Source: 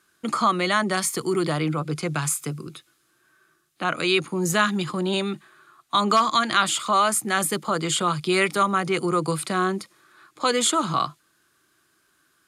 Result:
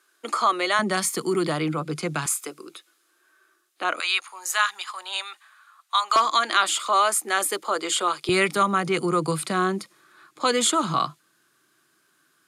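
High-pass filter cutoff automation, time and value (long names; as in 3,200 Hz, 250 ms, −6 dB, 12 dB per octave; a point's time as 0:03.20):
high-pass filter 24 dB per octave
340 Hz
from 0:00.79 160 Hz
from 0:02.26 330 Hz
from 0:04.00 850 Hz
from 0:06.16 340 Hz
from 0:08.29 120 Hz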